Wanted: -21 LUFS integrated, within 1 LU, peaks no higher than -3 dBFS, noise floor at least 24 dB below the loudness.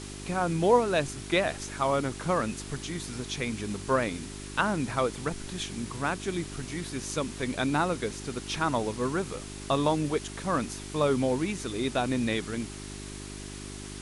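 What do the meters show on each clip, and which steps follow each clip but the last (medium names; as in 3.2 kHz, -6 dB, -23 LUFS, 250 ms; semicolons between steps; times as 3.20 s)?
hum 50 Hz; highest harmonic 400 Hz; hum level -40 dBFS; noise floor -41 dBFS; noise floor target -54 dBFS; loudness -29.5 LUFS; peak level -11.5 dBFS; loudness target -21.0 LUFS
-> de-hum 50 Hz, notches 8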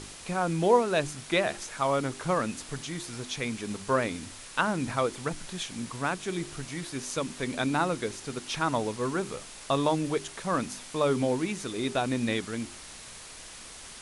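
hum not found; noise floor -46 dBFS; noise floor target -54 dBFS
-> noise reduction 8 dB, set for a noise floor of -46 dBFS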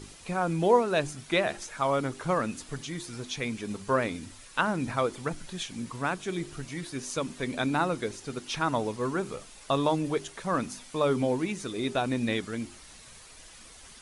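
noise floor -50 dBFS; noise floor target -54 dBFS
-> noise reduction 6 dB, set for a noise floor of -50 dBFS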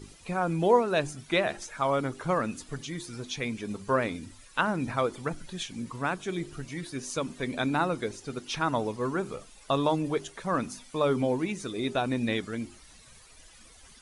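noise floor -54 dBFS; loudness -30.0 LUFS; peak level -11.0 dBFS; loudness target -21.0 LUFS
-> trim +9 dB; peak limiter -3 dBFS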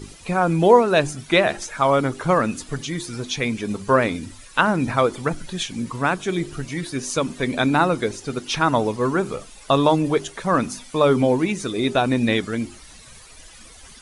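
loudness -21.0 LUFS; peak level -3.0 dBFS; noise floor -45 dBFS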